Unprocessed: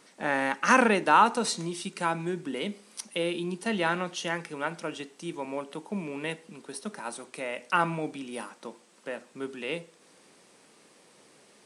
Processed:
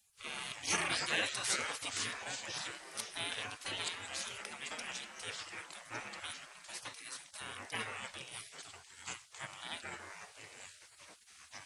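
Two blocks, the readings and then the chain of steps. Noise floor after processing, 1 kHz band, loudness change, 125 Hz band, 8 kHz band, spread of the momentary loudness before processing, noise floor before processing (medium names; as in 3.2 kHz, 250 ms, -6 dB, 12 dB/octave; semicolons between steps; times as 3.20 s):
-61 dBFS, -17.5 dB, -10.5 dB, -15.0 dB, -0.5 dB, 18 LU, -59 dBFS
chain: ever faster or slower copies 98 ms, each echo -4 st, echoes 2, each echo -6 dB; spectral gate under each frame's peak -20 dB weak; trim +1.5 dB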